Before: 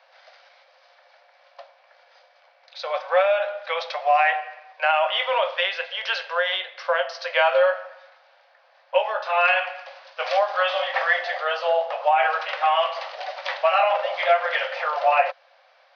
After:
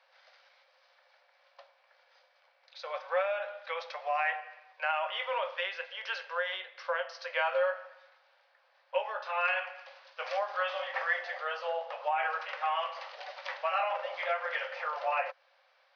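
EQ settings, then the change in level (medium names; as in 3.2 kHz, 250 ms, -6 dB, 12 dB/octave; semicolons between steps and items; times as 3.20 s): dynamic bell 3.7 kHz, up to -6 dB, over -40 dBFS, Q 1.6; peaking EQ 680 Hz -7.5 dB 0.38 oct; -8.5 dB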